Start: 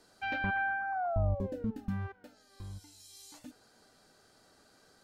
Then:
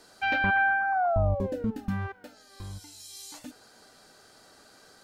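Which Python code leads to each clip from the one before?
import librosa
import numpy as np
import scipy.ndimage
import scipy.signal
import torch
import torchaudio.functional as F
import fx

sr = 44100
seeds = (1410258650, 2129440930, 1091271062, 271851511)

y = fx.low_shelf(x, sr, hz=350.0, db=-5.5)
y = y * librosa.db_to_amplitude(9.0)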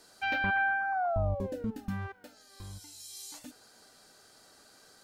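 y = fx.high_shelf(x, sr, hz=4500.0, db=6.0)
y = y * librosa.db_to_amplitude(-5.0)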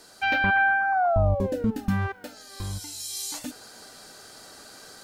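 y = fx.rider(x, sr, range_db=4, speed_s=2.0)
y = y * librosa.db_to_amplitude(8.0)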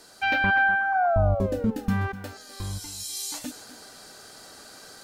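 y = x + 10.0 ** (-14.5 / 20.0) * np.pad(x, (int(250 * sr / 1000.0), 0))[:len(x)]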